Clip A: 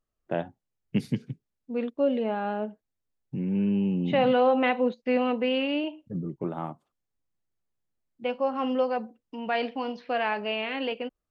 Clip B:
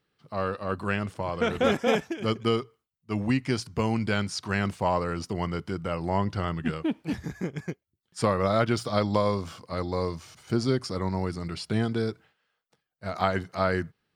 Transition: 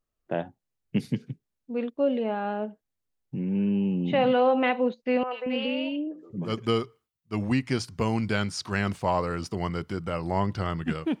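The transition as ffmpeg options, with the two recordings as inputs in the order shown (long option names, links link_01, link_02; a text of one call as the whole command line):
ffmpeg -i cue0.wav -i cue1.wav -filter_complex "[0:a]asettb=1/sr,asplit=3[link_01][link_02][link_03];[link_01]atrim=end=5.234[link_04];[link_02]atrim=start=5.23:end=6.57,asetpts=PTS-STARTPTS,afade=type=in:duration=0.004:curve=qsin,afade=type=out:start_time=1.336:duration=0.004:curve=qsin,acrossover=split=480|1800[link_05][link_06][link_07];[link_07]adelay=80[link_08];[link_05]adelay=230[link_09];[link_09][link_06][link_08]amix=inputs=3:normalize=0,atrim=end_sample=59094[link_10];[link_03]atrim=start=6.566[link_11];[link_04][link_10]acrossfade=duration=0.004:curve1=hsin:curve2=qsin[link_12];[link_12][link_11]acrossfade=duration=0.004:curve1=qsin:curve2=hsin,apad=whole_dur=11.2,atrim=end=11.2,atrim=end=6.57,asetpts=PTS-STARTPTS[link_13];[1:a]atrim=start=2.19:end=6.98,asetpts=PTS-STARTPTS[link_14];[link_13][link_14]acrossfade=duration=0.16:curve1=tri:curve2=tri" out.wav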